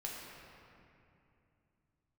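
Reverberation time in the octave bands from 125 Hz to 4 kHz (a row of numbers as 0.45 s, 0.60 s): 4.0 s, 3.5 s, 2.8 s, 2.6 s, 2.4 s, 1.7 s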